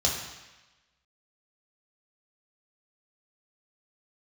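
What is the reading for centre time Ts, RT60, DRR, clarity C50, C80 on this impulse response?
46 ms, 1.1 s, -2.0 dB, 4.0 dB, 6.0 dB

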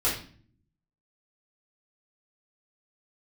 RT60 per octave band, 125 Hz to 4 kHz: 1.0, 0.90, 0.50, 0.40, 0.45, 0.40 s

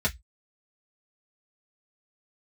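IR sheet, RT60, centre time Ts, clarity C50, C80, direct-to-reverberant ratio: 0.10 s, 8 ms, 23.0 dB, 36.5 dB, -4.0 dB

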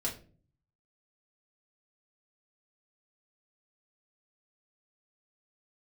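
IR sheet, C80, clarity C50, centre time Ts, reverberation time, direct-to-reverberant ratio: 16.0 dB, 11.0 dB, 19 ms, 0.40 s, -3.5 dB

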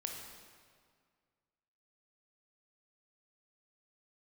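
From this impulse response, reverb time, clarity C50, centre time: 1.9 s, 3.0 dB, 64 ms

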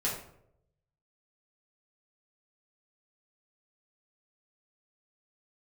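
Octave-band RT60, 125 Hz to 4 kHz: 1.2, 0.75, 0.85, 0.60, 0.50, 0.40 s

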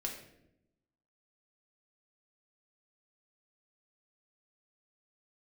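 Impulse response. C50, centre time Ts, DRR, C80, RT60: 6.0 dB, 29 ms, 0.0 dB, 8.5 dB, 0.85 s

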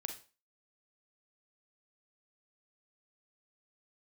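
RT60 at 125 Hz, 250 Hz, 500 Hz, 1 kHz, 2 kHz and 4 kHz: 0.25, 0.35, 0.35, 0.35, 0.35, 0.30 s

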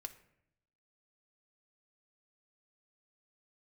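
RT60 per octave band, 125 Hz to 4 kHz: 1.1, 0.95, 0.80, 0.70, 0.70, 0.45 s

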